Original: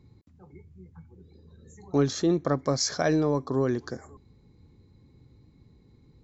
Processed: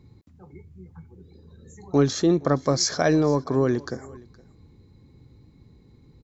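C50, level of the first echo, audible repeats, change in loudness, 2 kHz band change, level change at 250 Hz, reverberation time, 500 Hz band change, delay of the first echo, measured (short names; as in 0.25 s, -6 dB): none, -23.0 dB, 1, +4.0 dB, +4.0 dB, +4.0 dB, none, +4.0 dB, 0.468 s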